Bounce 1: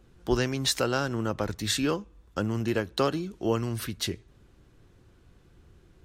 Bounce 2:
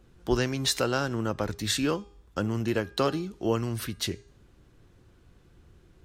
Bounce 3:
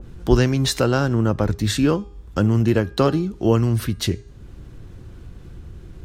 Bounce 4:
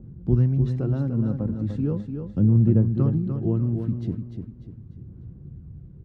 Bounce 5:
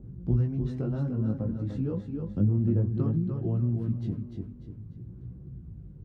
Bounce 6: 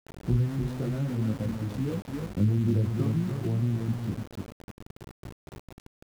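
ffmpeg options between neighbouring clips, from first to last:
-af "bandreject=f=405.9:t=h:w=4,bandreject=f=811.8:t=h:w=4,bandreject=f=1.2177k:t=h:w=4,bandreject=f=1.6236k:t=h:w=4,bandreject=f=2.0295k:t=h:w=4,bandreject=f=2.4354k:t=h:w=4,bandreject=f=2.8413k:t=h:w=4,bandreject=f=3.2472k:t=h:w=4,bandreject=f=3.6531k:t=h:w=4,bandreject=f=4.059k:t=h:w=4,bandreject=f=4.4649k:t=h:w=4,bandreject=f=4.8708k:t=h:w=4,bandreject=f=5.2767k:t=h:w=4,bandreject=f=5.6826k:t=h:w=4,bandreject=f=6.0885k:t=h:w=4,bandreject=f=6.4944k:t=h:w=4,bandreject=f=6.9003k:t=h:w=4,bandreject=f=7.3062k:t=h:w=4,bandreject=f=7.7121k:t=h:w=4,bandreject=f=8.118k:t=h:w=4,bandreject=f=8.5239k:t=h:w=4,bandreject=f=8.9298k:t=h:w=4,bandreject=f=9.3357k:t=h:w=4"
-filter_complex "[0:a]lowshelf=f=250:g=9.5,asplit=2[a][b];[b]acompressor=mode=upward:threshold=-30dB:ratio=2.5,volume=-1dB[c];[a][c]amix=inputs=2:normalize=0,adynamicequalizer=threshold=0.0126:dfrequency=1800:dqfactor=0.7:tfrequency=1800:tqfactor=0.7:attack=5:release=100:ratio=0.375:range=2:mode=cutabove:tftype=highshelf"
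-filter_complex "[0:a]aphaser=in_gain=1:out_gain=1:delay=3.9:decay=0.39:speed=0.38:type=sinusoidal,bandpass=f=150:t=q:w=1.7:csg=0,asplit=2[a][b];[b]aecho=0:1:297|594|891|1188:0.447|0.17|0.0645|0.0245[c];[a][c]amix=inputs=2:normalize=0"
-filter_complex "[0:a]flanger=delay=16:depth=4.6:speed=0.56,asplit=2[a][b];[b]acompressor=threshold=-31dB:ratio=6,volume=1dB[c];[a][c]amix=inputs=2:normalize=0,volume=-5dB"
-af "aeval=exprs='val(0)*gte(abs(val(0)),0.0141)':c=same"

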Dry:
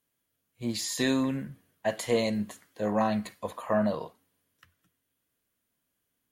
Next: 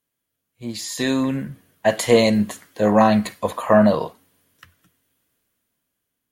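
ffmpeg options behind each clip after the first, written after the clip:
-af "dynaudnorm=f=210:g=13:m=14dB"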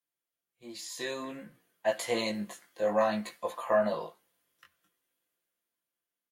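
-af "bass=f=250:g=-13,treble=f=4k:g=-1,aecho=1:1:5.8:0.42,flanger=delay=17:depth=3.9:speed=0.55,volume=-8.5dB"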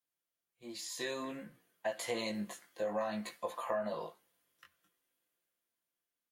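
-af "acompressor=threshold=-32dB:ratio=4,volume=-1.5dB"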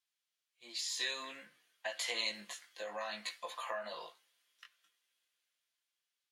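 -af "bandpass=f=3.7k:t=q:w=0.89:csg=0,volume=7.5dB"

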